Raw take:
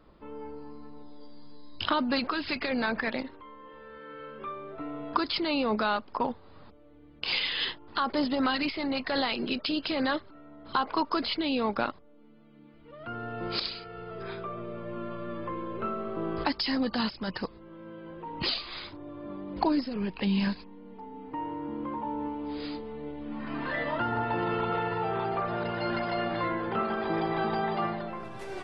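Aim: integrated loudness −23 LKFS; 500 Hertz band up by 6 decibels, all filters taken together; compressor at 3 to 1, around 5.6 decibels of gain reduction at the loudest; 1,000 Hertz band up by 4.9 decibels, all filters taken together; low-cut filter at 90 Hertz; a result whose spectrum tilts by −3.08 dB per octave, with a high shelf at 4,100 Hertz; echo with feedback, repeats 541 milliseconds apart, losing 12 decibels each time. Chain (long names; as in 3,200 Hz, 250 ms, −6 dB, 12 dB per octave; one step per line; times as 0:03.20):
high-pass filter 90 Hz
parametric band 500 Hz +6.5 dB
parametric band 1,000 Hz +4.5 dB
high-shelf EQ 4,100 Hz −4.5 dB
downward compressor 3 to 1, threshold −27 dBFS
repeating echo 541 ms, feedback 25%, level −12 dB
level +9 dB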